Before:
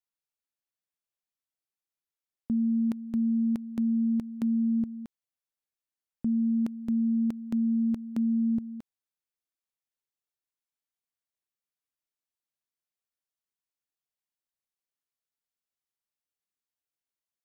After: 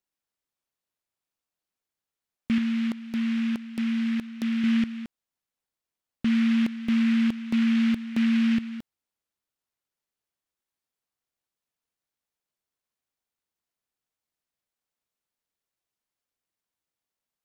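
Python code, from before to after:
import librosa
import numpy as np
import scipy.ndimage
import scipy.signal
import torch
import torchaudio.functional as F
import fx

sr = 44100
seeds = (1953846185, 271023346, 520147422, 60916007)

y = fx.low_shelf(x, sr, hz=200.0, db=-9.5, at=(2.58, 4.64))
y = fx.noise_mod_delay(y, sr, seeds[0], noise_hz=2100.0, depth_ms=0.11)
y = y * 10.0 ** (4.0 / 20.0)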